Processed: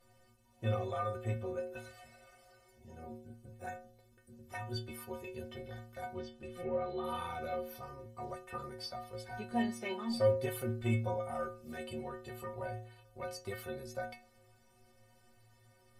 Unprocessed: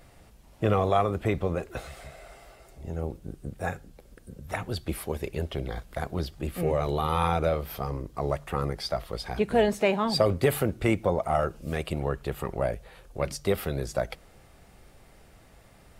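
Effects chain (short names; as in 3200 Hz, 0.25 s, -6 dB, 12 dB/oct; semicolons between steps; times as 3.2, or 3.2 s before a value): 6.08–7.04 treble ducked by the level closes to 2300 Hz, closed at -21.5 dBFS; metallic resonator 110 Hz, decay 0.76 s, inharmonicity 0.03; gain +3.5 dB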